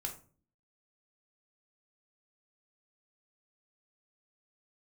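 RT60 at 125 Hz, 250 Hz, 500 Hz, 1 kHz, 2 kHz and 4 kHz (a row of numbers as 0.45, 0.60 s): 0.65, 0.70, 0.45, 0.35, 0.30, 0.25 s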